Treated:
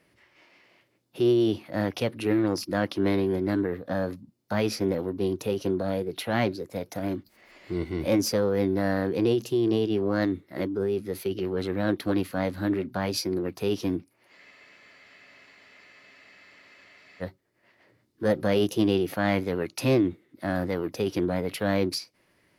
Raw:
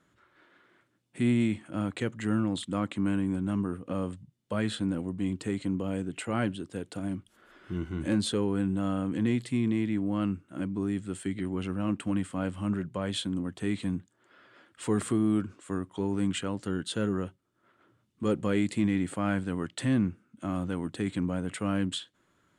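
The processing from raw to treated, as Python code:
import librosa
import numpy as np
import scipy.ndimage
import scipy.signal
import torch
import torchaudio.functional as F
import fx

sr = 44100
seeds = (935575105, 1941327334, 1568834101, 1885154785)

y = fx.cheby_harmonics(x, sr, harmonics=(7,), levels_db=(-39,), full_scale_db=-14.5)
y = fx.formant_shift(y, sr, semitones=6)
y = fx.spec_freeze(y, sr, seeds[0], at_s=14.4, hold_s=2.82)
y = y * 10.0 ** (4.0 / 20.0)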